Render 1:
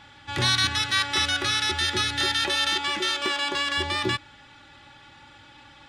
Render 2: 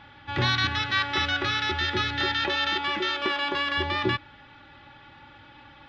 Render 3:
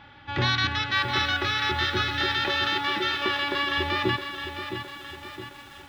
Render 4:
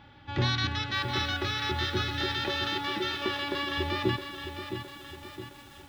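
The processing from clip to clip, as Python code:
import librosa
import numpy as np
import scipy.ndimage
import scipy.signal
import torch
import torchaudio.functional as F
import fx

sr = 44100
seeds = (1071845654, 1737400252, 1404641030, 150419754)

y1 = scipy.ndimage.gaussian_filter1d(x, 2.2, mode='constant')
y1 = y1 * librosa.db_to_amplitude(1.5)
y2 = fx.echo_crushed(y1, sr, ms=664, feedback_pct=55, bits=8, wet_db=-8.5)
y3 = fx.peak_eq(y2, sr, hz=1700.0, db=-7.5, octaves=2.7)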